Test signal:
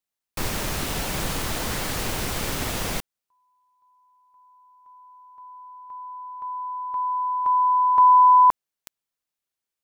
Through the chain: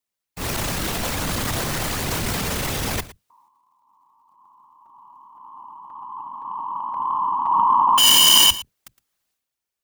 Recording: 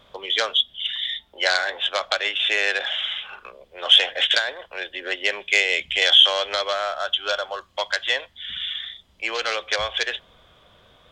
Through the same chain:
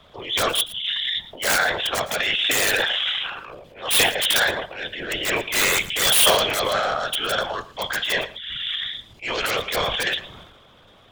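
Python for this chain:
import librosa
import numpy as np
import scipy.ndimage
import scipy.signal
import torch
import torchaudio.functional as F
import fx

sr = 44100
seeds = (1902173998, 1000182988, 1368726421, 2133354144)

p1 = fx.octave_divider(x, sr, octaves=2, level_db=-3.0)
p2 = (np.mod(10.0 ** (11.5 / 20.0) * p1 + 1.0, 2.0) - 1.0) / 10.0 ** (11.5 / 20.0)
p3 = fx.whisperise(p2, sr, seeds[0])
p4 = fx.transient(p3, sr, attack_db=-8, sustain_db=9)
p5 = p4 + fx.echo_single(p4, sr, ms=113, db=-17.0, dry=0)
y = p5 * 10.0 ** (2.0 / 20.0)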